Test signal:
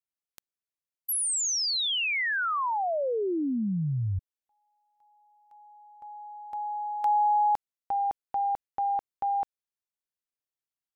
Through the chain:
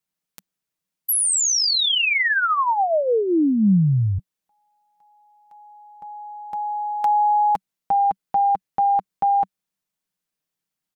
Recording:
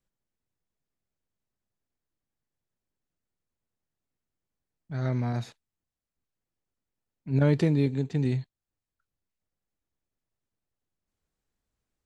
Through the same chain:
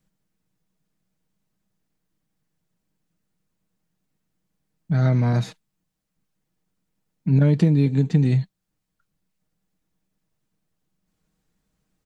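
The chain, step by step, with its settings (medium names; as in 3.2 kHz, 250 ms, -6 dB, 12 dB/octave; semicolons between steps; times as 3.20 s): peaking EQ 190 Hz +11.5 dB 0.58 oct; comb 6.4 ms, depth 41%; compression 4:1, threshold -23 dBFS; trim +8 dB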